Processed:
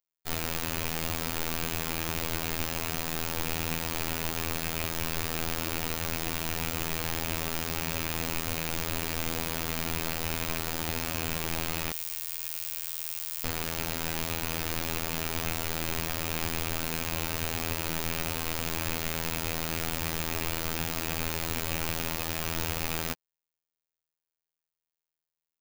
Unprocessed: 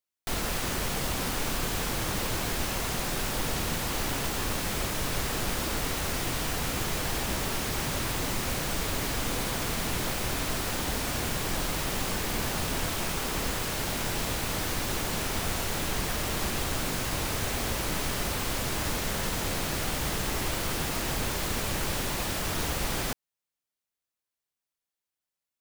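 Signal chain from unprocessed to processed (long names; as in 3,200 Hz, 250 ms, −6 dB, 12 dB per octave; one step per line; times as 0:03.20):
loose part that buzzes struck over −32 dBFS, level −22 dBFS
phases set to zero 81.8 Hz
0:11.92–0:13.44: first-order pre-emphasis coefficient 0.97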